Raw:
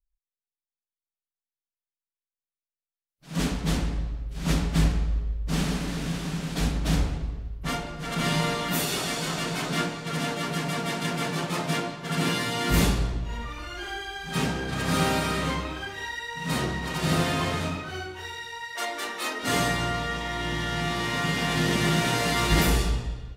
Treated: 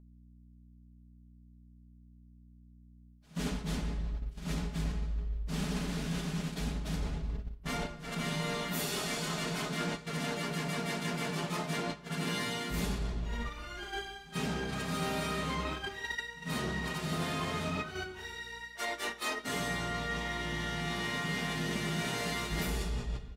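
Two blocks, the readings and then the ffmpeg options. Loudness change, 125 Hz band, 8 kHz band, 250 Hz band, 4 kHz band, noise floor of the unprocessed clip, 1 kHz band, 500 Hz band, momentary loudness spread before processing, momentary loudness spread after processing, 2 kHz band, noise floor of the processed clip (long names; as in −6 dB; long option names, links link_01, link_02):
−8.0 dB, −9.0 dB, −8.5 dB, −8.0 dB, −8.0 dB, below −85 dBFS, −8.5 dB, −7.5 dB, 10 LU, 6 LU, −7.0 dB, −57 dBFS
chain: -af "agate=range=-11dB:threshold=-32dB:ratio=16:detection=peak,aeval=exprs='val(0)+0.00112*(sin(2*PI*60*n/s)+sin(2*PI*2*60*n/s)/2+sin(2*PI*3*60*n/s)/3+sin(2*PI*4*60*n/s)/4+sin(2*PI*5*60*n/s)/5)':channel_layout=same,areverse,acompressor=threshold=-38dB:ratio=5,areverse,aecho=1:1:4.8:0.39,volume=4dB"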